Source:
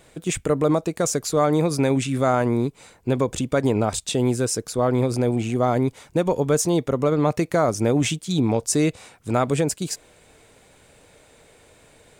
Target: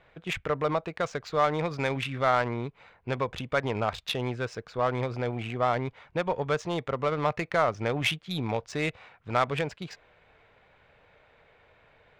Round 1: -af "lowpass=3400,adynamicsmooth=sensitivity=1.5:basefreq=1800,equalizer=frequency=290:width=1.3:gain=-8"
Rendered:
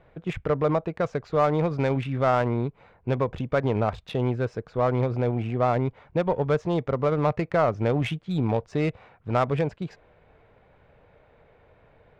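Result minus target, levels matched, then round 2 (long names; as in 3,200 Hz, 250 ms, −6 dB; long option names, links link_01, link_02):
1,000 Hz band −2.5 dB
-af "lowpass=3400,tiltshelf=frequency=1100:gain=-7.5,adynamicsmooth=sensitivity=1.5:basefreq=1800,equalizer=frequency=290:width=1.3:gain=-8"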